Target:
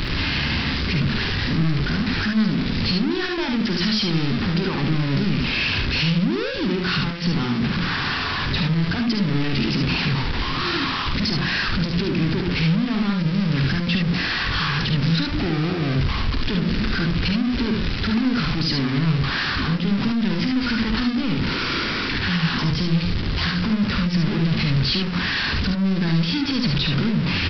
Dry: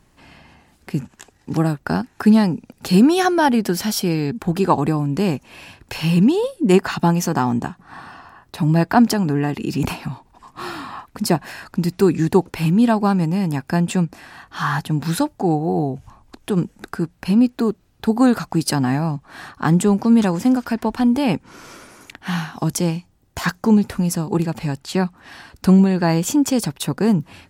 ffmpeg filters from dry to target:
-af "aeval=exprs='val(0)+0.5*0.119*sgn(val(0))':c=same,bandreject=f=60:t=h:w=6,bandreject=f=120:t=h:w=6,bandreject=f=180:t=h:w=6,bandreject=f=240:t=h:w=6,bandreject=f=300:t=h:w=6,bandreject=f=360:t=h:w=6,alimiter=limit=-11.5dB:level=0:latency=1:release=78,aresample=11025,asoftclip=type=tanh:threshold=-23.5dB,aresample=44100,equalizer=f=710:t=o:w=1.4:g=-14.5,aecho=1:1:50|73:0.398|0.596,volume=5.5dB"

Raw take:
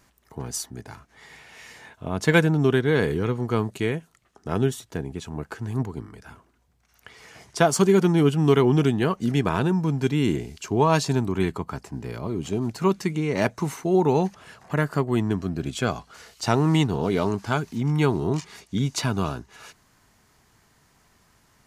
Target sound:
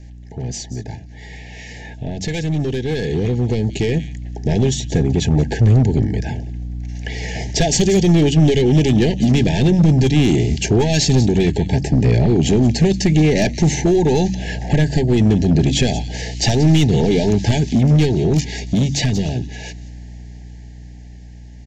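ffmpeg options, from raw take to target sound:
-filter_complex "[0:a]lowshelf=f=94:g=-5,acrossover=split=2800[a][b];[a]acompressor=threshold=-29dB:ratio=16[c];[b]aecho=1:1:179:0.15[d];[c][d]amix=inputs=2:normalize=0,aeval=exprs='val(0)+0.00224*(sin(2*PI*60*n/s)+sin(2*PI*2*60*n/s)/2+sin(2*PI*3*60*n/s)/3+sin(2*PI*4*60*n/s)/4+sin(2*PI*5*60*n/s)/5)':c=same,aresample=16000,asoftclip=type=tanh:threshold=-32dB,aresample=44100,asuperstop=centerf=1200:order=20:qfactor=1.7,lowshelf=f=310:g=11,bandreject=f=46.77:t=h:w=4,bandreject=f=93.54:t=h:w=4,bandreject=f=140.31:t=h:w=4,bandreject=f=187.08:t=h:w=4,bandreject=f=233.85:t=h:w=4,bandreject=f=280.62:t=h:w=4,bandreject=f=327.39:t=h:w=4,asoftclip=type=hard:threshold=-25.5dB,dynaudnorm=f=420:g=17:m=11dB,volume=7dB"

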